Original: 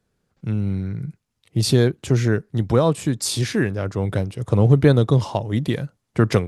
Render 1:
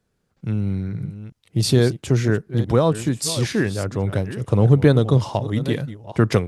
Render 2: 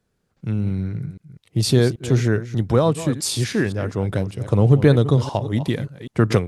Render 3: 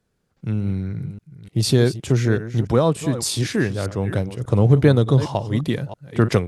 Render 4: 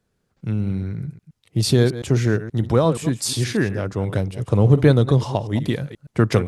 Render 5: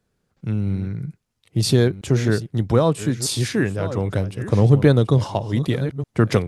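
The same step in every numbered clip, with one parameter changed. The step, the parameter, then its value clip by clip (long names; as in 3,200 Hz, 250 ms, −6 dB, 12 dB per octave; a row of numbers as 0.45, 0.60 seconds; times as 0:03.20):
delay that plays each chunk backwards, delay time: 441, 196, 297, 119, 671 milliseconds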